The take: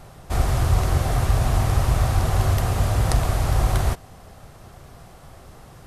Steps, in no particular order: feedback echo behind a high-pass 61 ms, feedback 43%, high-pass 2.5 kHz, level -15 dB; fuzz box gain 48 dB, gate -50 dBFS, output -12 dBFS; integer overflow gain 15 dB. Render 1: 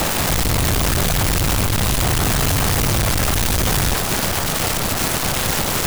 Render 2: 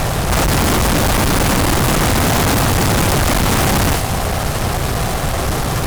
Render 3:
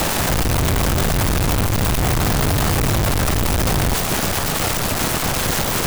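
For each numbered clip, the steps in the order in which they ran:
fuzz box > feedback echo behind a high-pass > integer overflow; feedback echo behind a high-pass > integer overflow > fuzz box; feedback echo behind a high-pass > fuzz box > integer overflow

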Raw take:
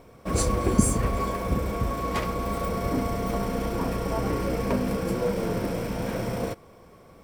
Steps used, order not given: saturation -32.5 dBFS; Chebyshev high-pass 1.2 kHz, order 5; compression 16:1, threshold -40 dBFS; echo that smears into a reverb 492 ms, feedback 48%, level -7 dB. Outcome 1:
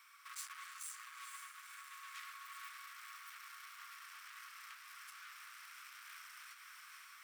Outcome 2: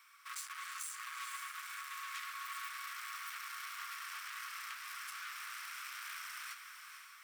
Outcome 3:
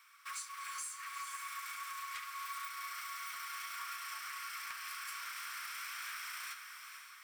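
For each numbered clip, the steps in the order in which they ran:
saturation > echo that smears into a reverb > compression > Chebyshev high-pass; saturation > Chebyshev high-pass > compression > echo that smears into a reverb; Chebyshev high-pass > compression > saturation > echo that smears into a reverb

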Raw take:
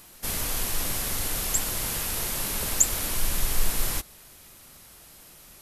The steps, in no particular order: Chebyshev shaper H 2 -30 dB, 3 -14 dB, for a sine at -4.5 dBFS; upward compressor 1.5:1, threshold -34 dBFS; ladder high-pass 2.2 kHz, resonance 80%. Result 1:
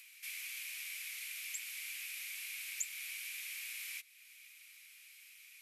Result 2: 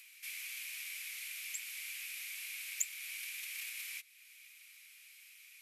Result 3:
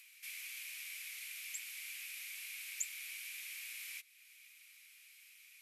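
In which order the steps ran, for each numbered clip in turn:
ladder high-pass > Chebyshev shaper > upward compressor; Chebyshev shaper > ladder high-pass > upward compressor; ladder high-pass > upward compressor > Chebyshev shaper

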